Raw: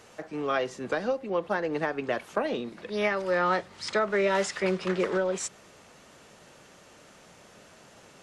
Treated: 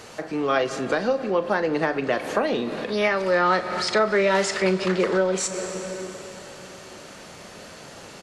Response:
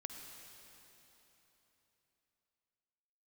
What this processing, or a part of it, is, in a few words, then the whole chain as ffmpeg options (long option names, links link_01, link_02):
ducked reverb: -filter_complex "[0:a]asplit=3[link_01][link_02][link_03];[1:a]atrim=start_sample=2205[link_04];[link_02][link_04]afir=irnorm=-1:irlink=0[link_05];[link_03]apad=whole_len=362679[link_06];[link_05][link_06]sidechaincompress=threshold=-40dB:ratio=4:attack=7.3:release=121,volume=5.5dB[link_07];[link_01][link_07]amix=inputs=2:normalize=0,equalizer=frequency=4400:width_type=o:width=0.21:gain=5.5,asplit=2[link_08][link_09];[link_09]adelay=37,volume=-13dB[link_10];[link_08][link_10]amix=inputs=2:normalize=0,volume=3.5dB"